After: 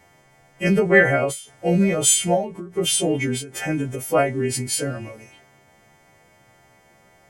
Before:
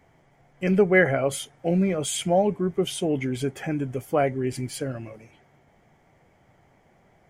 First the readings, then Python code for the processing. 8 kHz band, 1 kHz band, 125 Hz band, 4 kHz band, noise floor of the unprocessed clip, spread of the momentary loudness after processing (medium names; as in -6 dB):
+13.0 dB, +3.0 dB, +3.0 dB, +8.0 dB, -61 dBFS, 12 LU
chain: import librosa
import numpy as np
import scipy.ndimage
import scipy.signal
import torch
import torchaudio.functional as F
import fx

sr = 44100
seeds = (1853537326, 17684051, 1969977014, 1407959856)

y = fx.freq_snap(x, sr, grid_st=2)
y = fx.end_taper(y, sr, db_per_s=120.0)
y = F.gain(torch.from_numpy(y), 4.5).numpy()